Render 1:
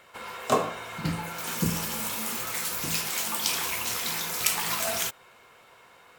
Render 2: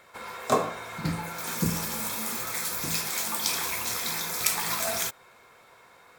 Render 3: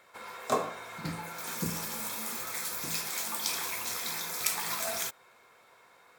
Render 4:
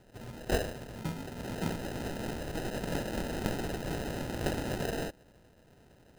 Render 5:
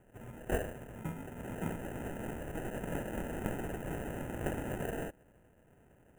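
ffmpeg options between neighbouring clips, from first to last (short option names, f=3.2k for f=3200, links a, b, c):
-af "bandreject=f=2.9k:w=5.5"
-af "lowshelf=f=140:g=-8.5,volume=-4.5dB"
-af "acrusher=samples=39:mix=1:aa=0.000001"
-af "asuperstop=centerf=4500:order=4:qfactor=0.94,volume=-3.5dB"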